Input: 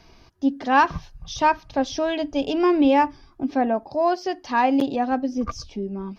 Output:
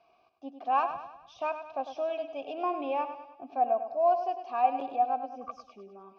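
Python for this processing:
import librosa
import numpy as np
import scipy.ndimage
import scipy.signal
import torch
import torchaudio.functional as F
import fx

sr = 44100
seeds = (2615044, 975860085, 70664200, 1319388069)

y = fx.vowel_filter(x, sr, vowel='a')
y = fx.echo_feedback(y, sr, ms=101, feedback_pct=48, wet_db=-10)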